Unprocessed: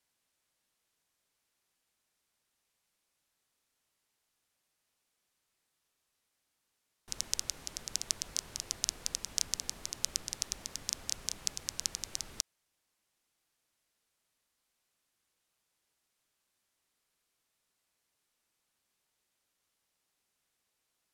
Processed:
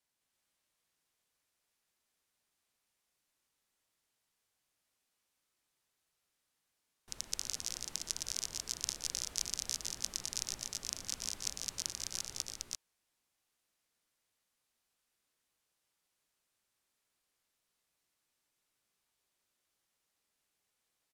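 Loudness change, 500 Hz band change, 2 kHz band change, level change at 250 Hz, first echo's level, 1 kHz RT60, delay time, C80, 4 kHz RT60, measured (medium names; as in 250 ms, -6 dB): -2.0 dB, -2.0 dB, -2.0 dB, -2.0 dB, -15.5 dB, no reverb, 118 ms, no reverb, no reverb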